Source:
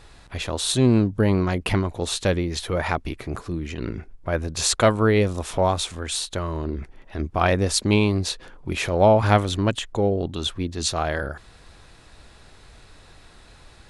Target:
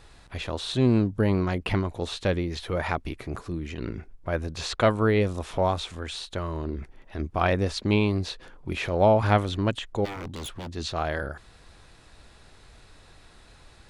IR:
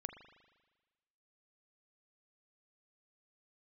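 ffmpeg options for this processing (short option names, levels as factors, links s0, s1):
-filter_complex "[0:a]acrossover=split=4500[s0][s1];[s1]acompressor=threshold=0.00562:ratio=4:attack=1:release=60[s2];[s0][s2]amix=inputs=2:normalize=0,asplit=3[s3][s4][s5];[s3]afade=t=out:st=10.04:d=0.02[s6];[s4]aeval=exprs='0.0447*(abs(mod(val(0)/0.0447+3,4)-2)-1)':c=same,afade=t=in:st=10.04:d=0.02,afade=t=out:st=10.74:d=0.02[s7];[s5]afade=t=in:st=10.74:d=0.02[s8];[s6][s7][s8]amix=inputs=3:normalize=0,volume=0.668"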